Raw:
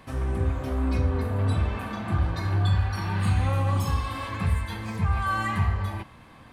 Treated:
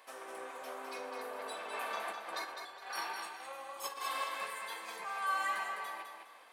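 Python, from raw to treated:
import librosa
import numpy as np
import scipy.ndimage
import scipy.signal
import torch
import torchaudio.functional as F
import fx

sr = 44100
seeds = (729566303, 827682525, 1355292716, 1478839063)

y = fx.over_compress(x, sr, threshold_db=-29.0, ratio=-1.0, at=(1.73, 4.24))
y = scipy.signal.sosfilt(scipy.signal.butter(4, 470.0, 'highpass', fs=sr, output='sos'), y)
y = fx.high_shelf(y, sr, hz=6200.0, db=7.0)
y = fx.echo_feedback(y, sr, ms=206, feedback_pct=30, wet_db=-6.0)
y = F.gain(torch.from_numpy(y), -7.0).numpy()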